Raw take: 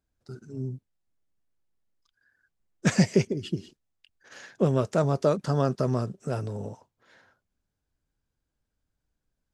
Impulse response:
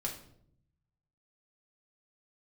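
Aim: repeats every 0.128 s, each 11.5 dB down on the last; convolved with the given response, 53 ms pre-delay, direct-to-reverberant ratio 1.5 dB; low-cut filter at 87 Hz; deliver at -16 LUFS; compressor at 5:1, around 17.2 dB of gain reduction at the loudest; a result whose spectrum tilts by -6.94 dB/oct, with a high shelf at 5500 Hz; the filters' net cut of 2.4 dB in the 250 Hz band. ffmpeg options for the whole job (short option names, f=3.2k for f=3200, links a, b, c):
-filter_complex "[0:a]highpass=87,equalizer=f=250:t=o:g=-3.5,highshelf=f=5.5k:g=-8,acompressor=threshold=-38dB:ratio=5,aecho=1:1:128|256|384:0.266|0.0718|0.0194,asplit=2[a][b];[1:a]atrim=start_sample=2205,adelay=53[c];[b][c]afir=irnorm=-1:irlink=0,volume=-3dB[d];[a][d]amix=inputs=2:normalize=0,volume=23.5dB"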